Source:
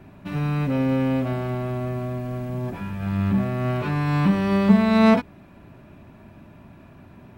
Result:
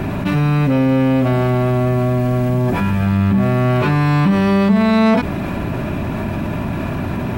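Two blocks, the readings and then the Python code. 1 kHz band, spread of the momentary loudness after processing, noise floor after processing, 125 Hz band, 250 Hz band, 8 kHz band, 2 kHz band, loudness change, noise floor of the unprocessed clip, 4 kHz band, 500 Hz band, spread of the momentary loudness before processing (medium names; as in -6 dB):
+7.5 dB, 9 LU, -22 dBFS, +9.0 dB, +6.5 dB, no reading, +7.5 dB, +6.0 dB, -48 dBFS, +7.0 dB, +8.0 dB, 13 LU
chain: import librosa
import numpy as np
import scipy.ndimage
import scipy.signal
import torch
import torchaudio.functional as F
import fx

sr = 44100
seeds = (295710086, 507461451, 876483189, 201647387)

y = fx.env_flatten(x, sr, amount_pct=70)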